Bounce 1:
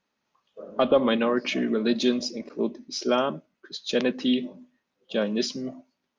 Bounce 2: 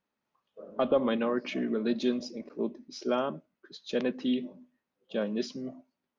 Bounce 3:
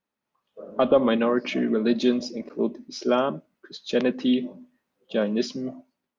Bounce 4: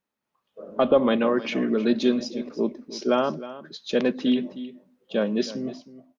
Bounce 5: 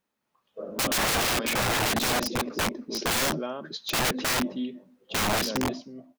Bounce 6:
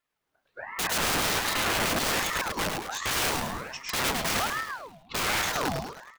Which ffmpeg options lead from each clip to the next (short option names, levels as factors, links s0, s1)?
-af "highshelf=f=2700:g=-8.5,volume=0.562"
-af "dynaudnorm=f=190:g=5:m=2.66,volume=0.841"
-af "aecho=1:1:313:0.168"
-af "aeval=exprs='(mod(15.8*val(0)+1,2)-1)/15.8':c=same,volume=1.5"
-filter_complex "[0:a]asplit=2[s0][s1];[s1]aecho=0:1:105|210|315|420|525|630:0.631|0.284|0.128|0.0575|0.0259|0.0116[s2];[s0][s2]amix=inputs=2:normalize=0,aeval=exprs='val(0)*sin(2*PI*980*n/s+980*0.6/1.3*sin(2*PI*1.3*n/s))':c=same"